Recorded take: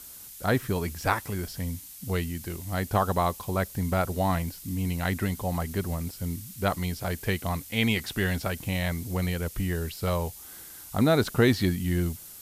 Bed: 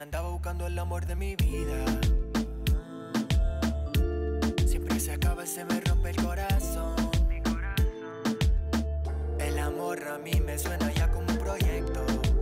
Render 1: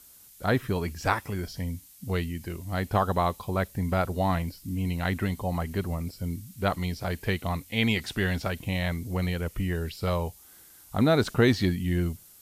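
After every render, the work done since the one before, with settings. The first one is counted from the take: noise print and reduce 8 dB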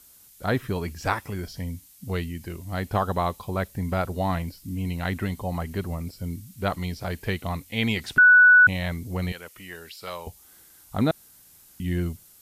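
8.18–8.67 bleep 1480 Hz -10 dBFS; 9.32–10.27 HPF 1200 Hz 6 dB/oct; 11.11–11.8 room tone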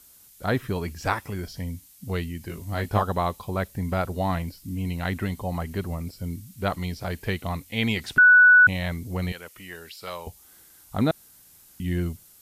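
2.47–3.02 doubler 19 ms -4 dB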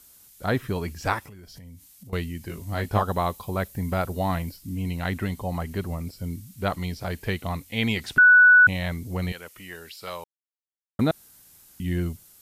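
1.19–2.13 compressor 16:1, threshold -41 dBFS; 3.08–4.57 high shelf 11000 Hz +7 dB; 10.24–10.99 mute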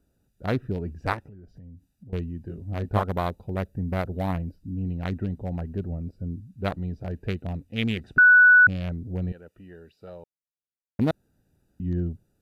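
Wiener smoothing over 41 samples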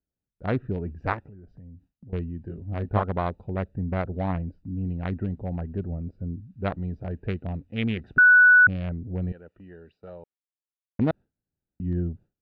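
gate with hold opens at -45 dBFS; LPF 2600 Hz 12 dB/oct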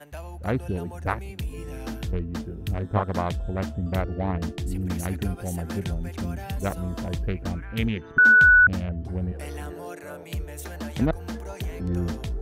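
add bed -5.5 dB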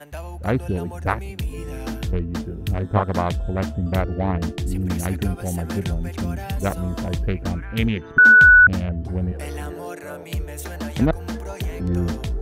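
gain +4.5 dB

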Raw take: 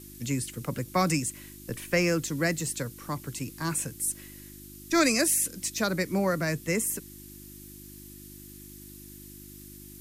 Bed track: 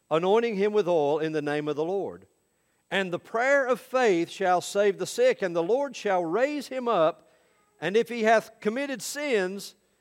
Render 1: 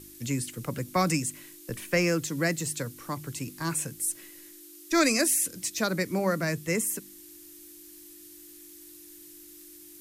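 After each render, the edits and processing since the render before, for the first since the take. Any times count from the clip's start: de-hum 50 Hz, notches 5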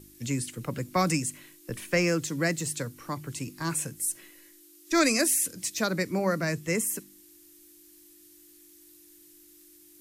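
noise print and reduce 6 dB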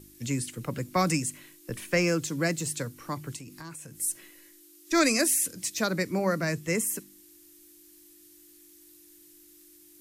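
2.01–2.67 notch 1900 Hz; 3.36–3.97 compressor, threshold -40 dBFS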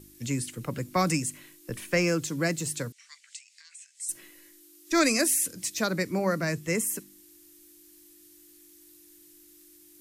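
2.92–4.09 elliptic band-pass 2000–8000 Hz, stop band 70 dB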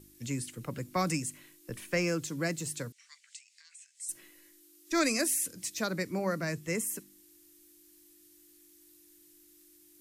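gain -5 dB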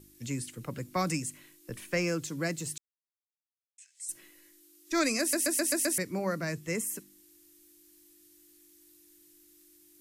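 2.78–3.78 mute; 5.2 stutter in place 0.13 s, 6 plays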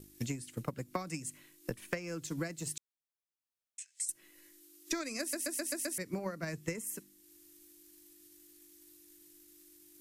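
transient shaper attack +11 dB, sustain -4 dB; compressor 20:1, threshold -33 dBFS, peak gain reduction 18.5 dB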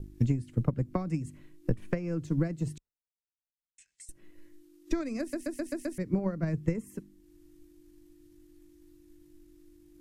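gate with hold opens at -54 dBFS; tilt -4.5 dB/oct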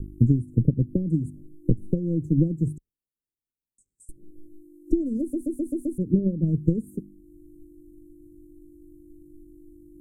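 inverse Chebyshev band-stop 970–3600 Hz, stop band 60 dB; resonant low shelf 740 Hz +7.5 dB, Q 3

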